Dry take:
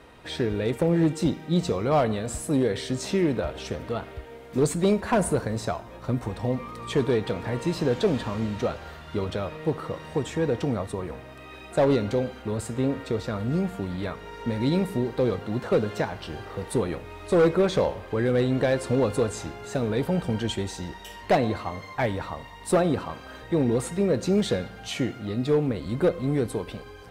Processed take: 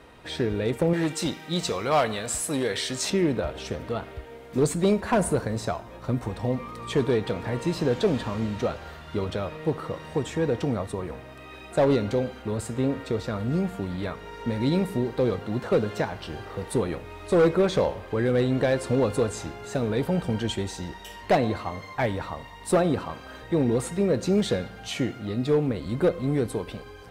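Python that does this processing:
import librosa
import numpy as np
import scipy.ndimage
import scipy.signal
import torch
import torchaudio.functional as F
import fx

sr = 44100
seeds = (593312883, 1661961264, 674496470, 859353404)

y = fx.tilt_shelf(x, sr, db=-7.0, hz=680.0, at=(0.93, 3.1))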